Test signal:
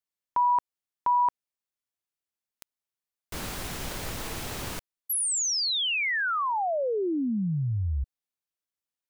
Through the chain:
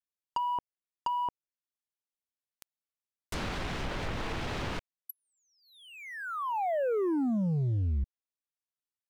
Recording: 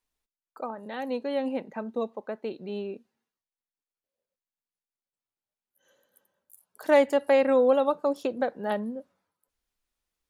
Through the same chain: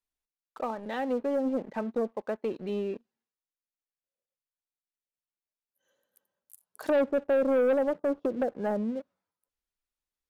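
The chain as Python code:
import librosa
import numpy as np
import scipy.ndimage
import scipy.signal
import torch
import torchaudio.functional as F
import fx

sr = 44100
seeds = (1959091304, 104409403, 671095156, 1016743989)

y = fx.env_lowpass_down(x, sr, base_hz=570.0, full_db=-24.5)
y = fx.leveller(y, sr, passes=2)
y = y * librosa.db_to_amplitude(-5.0)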